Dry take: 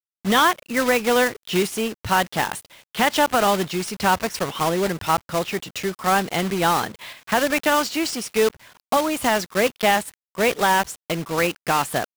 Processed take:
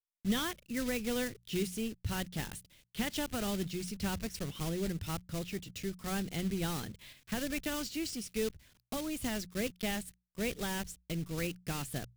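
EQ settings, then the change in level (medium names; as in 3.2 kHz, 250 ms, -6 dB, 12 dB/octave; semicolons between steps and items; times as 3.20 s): amplifier tone stack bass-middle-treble 10-0-1; hum notches 60/120/180 Hz; +8.0 dB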